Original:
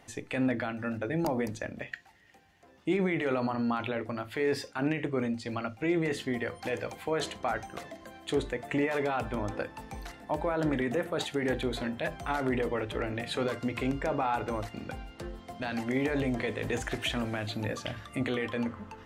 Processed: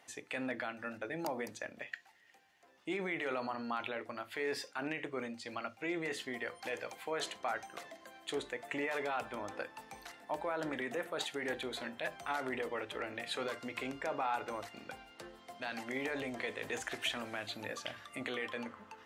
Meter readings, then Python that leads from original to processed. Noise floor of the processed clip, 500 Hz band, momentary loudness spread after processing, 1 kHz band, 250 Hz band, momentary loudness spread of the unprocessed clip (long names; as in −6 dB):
−63 dBFS, −8.0 dB, 9 LU, −5.0 dB, −12.0 dB, 9 LU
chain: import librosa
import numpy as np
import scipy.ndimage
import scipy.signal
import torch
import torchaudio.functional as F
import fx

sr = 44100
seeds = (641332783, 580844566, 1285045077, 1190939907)

y = fx.highpass(x, sr, hz=720.0, slope=6)
y = y * librosa.db_to_amplitude(-3.0)